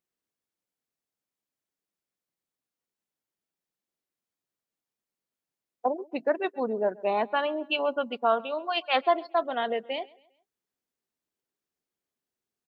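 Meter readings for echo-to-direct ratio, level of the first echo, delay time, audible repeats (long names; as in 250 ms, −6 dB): −23.0 dB, −23.5 dB, 134 ms, 2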